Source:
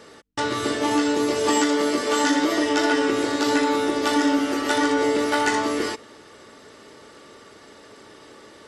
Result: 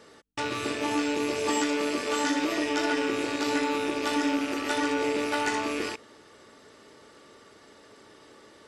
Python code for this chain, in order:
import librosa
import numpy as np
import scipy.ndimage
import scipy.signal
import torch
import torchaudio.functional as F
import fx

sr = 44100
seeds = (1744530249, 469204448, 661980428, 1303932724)

y = fx.rattle_buzz(x, sr, strikes_db=-39.0, level_db=-19.0)
y = F.gain(torch.from_numpy(y), -6.5).numpy()